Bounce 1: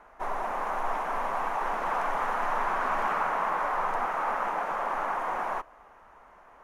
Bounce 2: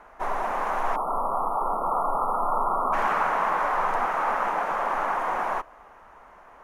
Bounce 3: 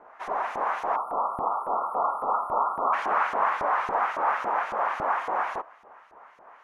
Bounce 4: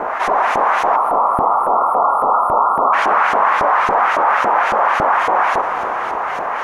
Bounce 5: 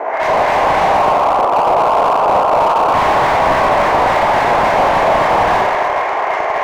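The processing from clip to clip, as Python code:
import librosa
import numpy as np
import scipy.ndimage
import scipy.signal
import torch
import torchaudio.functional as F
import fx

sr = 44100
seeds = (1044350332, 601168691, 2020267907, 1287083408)

y1 = fx.spec_erase(x, sr, start_s=0.96, length_s=1.97, low_hz=1400.0, high_hz=9000.0)
y1 = F.gain(torch.from_numpy(y1), 4.0).numpy()
y2 = fx.filter_lfo_bandpass(y1, sr, shape='saw_up', hz=3.6, low_hz=340.0, high_hz=5300.0, q=0.87)
y2 = F.gain(torch.from_numpy(y2), 2.5).numpy()
y3 = fx.rev_plate(y2, sr, seeds[0], rt60_s=4.3, hf_ratio=0.95, predelay_ms=0, drr_db=17.0)
y3 = fx.env_flatten(y3, sr, amount_pct=70)
y3 = F.gain(torch.from_numpy(y3), 8.5).numpy()
y4 = fx.cabinet(y3, sr, low_hz=320.0, low_slope=24, high_hz=7200.0, hz=(650.0, 1300.0, 2100.0), db=(5, -9, 6))
y4 = fx.rev_schroeder(y4, sr, rt60_s=1.8, comb_ms=29, drr_db=-4.0)
y4 = fx.slew_limit(y4, sr, full_power_hz=330.0)
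y4 = F.gain(torch.from_numpy(y4), -1.0).numpy()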